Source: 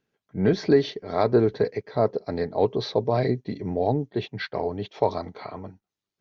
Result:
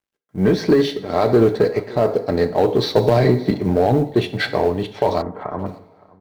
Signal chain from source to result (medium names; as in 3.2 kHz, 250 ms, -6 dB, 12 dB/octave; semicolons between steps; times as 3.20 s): companding laws mixed up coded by A; two-slope reverb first 0.53 s, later 2 s, from -21 dB, DRR 9 dB; level rider gain up to 14.5 dB; 5.22–5.66 s: steep low-pass 1.8 kHz 36 dB/octave; in parallel at -10.5 dB: wavefolder -13.5 dBFS; on the sum: delay 568 ms -23.5 dB; loudness maximiser +5.5 dB; 2.96–3.51 s: three bands compressed up and down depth 100%; trim -5 dB